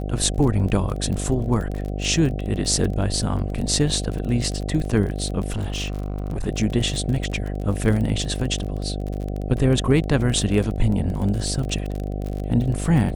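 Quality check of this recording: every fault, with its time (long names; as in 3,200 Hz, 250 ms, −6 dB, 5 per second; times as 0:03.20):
mains buzz 50 Hz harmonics 15 −27 dBFS
surface crackle 31 per second −27 dBFS
0:05.50–0:06.47: clipping −22 dBFS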